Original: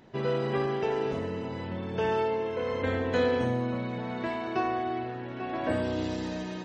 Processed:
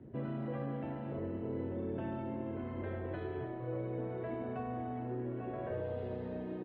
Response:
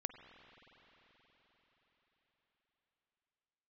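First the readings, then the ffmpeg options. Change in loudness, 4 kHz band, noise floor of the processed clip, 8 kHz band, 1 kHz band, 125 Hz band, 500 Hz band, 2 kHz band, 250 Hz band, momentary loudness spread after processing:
−9.5 dB, below −20 dB, −42 dBFS, can't be measured, −12.5 dB, −5.0 dB, −11.0 dB, −16.0 dB, −7.0 dB, 2 LU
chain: -filter_complex "[0:a]highpass=86,acrossover=split=430|3000[link_01][link_02][link_03];[link_02]acompressor=threshold=-30dB:ratio=6[link_04];[link_01][link_04][link_03]amix=inputs=3:normalize=0,firequalizer=gain_entry='entry(120,0);entry(840,-25);entry(3400,-7)':delay=0.05:min_phase=1,acrossover=split=220|1600[link_05][link_06][link_07];[link_05]alimiter=level_in=28dB:limit=-24dB:level=0:latency=1,volume=-28dB[link_08];[link_07]acrusher=bits=3:dc=4:mix=0:aa=0.000001[link_09];[link_08][link_06][link_09]amix=inputs=3:normalize=0,equalizer=frequency=180:width=3:gain=-12,afftfilt=real='re*lt(hypot(re,im),0.0316)':imag='im*lt(hypot(re,im),0.0316)':win_size=1024:overlap=0.75,asplit=5[link_10][link_11][link_12][link_13][link_14];[link_11]adelay=243,afreqshift=140,volume=-20.5dB[link_15];[link_12]adelay=486,afreqshift=280,volume=-26.7dB[link_16];[link_13]adelay=729,afreqshift=420,volume=-32.9dB[link_17];[link_14]adelay=972,afreqshift=560,volume=-39.1dB[link_18];[link_10][link_15][link_16][link_17][link_18]amix=inputs=5:normalize=0,volume=12dB"

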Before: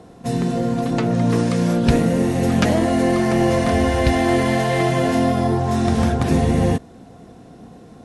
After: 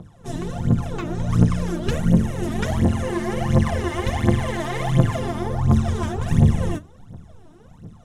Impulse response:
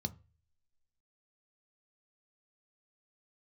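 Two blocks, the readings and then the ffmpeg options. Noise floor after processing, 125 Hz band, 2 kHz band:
−48 dBFS, +1.0 dB, −6.0 dB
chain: -filter_complex "[0:a]tremolo=f=150:d=0.857,aphaser=in_gain=1:out_gain=1:delay=3.4:decay=0.8:speed=1.4:type=triangular,asplit=2[link_01][link_02];[1:a]atrim=start_sample=2205[link_03];[link_02][link_03]afir=irnorm=-1:irlink=0,volume=-9dB[link_04];[link_01][link_04]amix=inputs=2:normalize=0,volume=-5dB"

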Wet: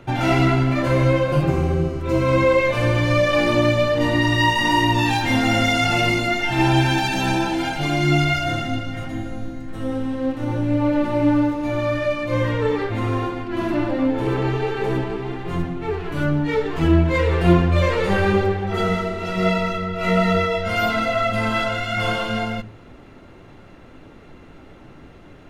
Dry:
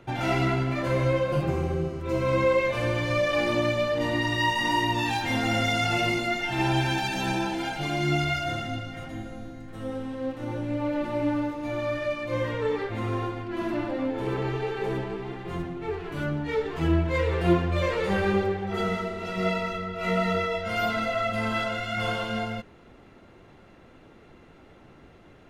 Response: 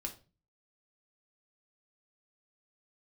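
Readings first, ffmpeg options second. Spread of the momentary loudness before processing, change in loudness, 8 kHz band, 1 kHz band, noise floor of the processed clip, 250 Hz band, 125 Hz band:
9 LU, +7.0 dB, +6.5 dB, +6.5 dB, −44 dBFS, +8.0 dB, +8.5 dB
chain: -filter_complex "[0:a]asplit=2[link_01][link_02];[1:a]atrim=start_sample=2205,lowshelf=frequency=350:gain=10[link_03];[link_02][link_03]afir=irnorm=-1:irlink=0,volume=-12.5dB[link_04];[link_01][link_04]amix=inputs=2:normalize=0,volume=5dB"

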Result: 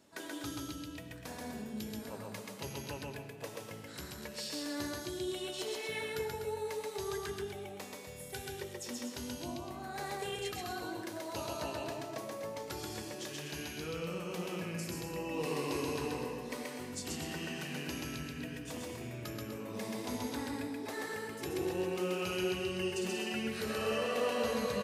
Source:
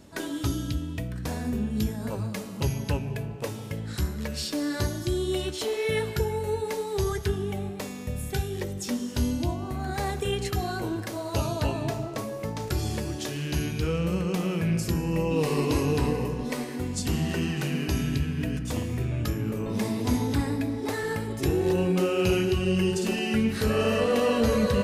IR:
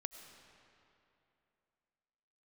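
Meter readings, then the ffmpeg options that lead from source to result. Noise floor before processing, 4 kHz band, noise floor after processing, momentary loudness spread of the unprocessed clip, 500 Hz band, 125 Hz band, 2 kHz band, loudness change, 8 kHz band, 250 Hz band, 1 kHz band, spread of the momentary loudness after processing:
−36 dBFS, −6.5 dB, −47 dBFS, 8 LU, −9.5 dB, −18.0 dB, −6.5 dB, −10.5 dB, −6.5 dB, −12.5 dB, −7.5 dB, 9 LU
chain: -filter_complex "[0:a]highpass=frequency=430:poles=1,aecho=1:1:131.2|247.8:0.794|0.355[link_01];[1:a]atrim=start_sample=2205,atrim=end_sample=6174[link_02];[link_01][link_02]afir=irnorm=-1:irlink=0,volume=-5.5dB"

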